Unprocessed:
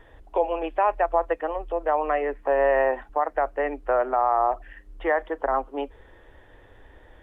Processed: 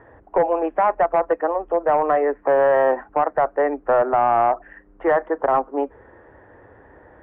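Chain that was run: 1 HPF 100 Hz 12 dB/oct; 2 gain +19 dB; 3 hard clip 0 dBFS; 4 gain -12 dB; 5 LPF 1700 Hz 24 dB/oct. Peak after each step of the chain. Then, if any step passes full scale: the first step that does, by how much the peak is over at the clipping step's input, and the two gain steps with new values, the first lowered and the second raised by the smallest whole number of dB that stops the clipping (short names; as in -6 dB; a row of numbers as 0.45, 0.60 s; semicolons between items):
-9.5, +9.5, 0.0, -12.0, -10.0 dBFS; step 2, 9.5 dB; step 2 +9 dB, step 4 -2 dB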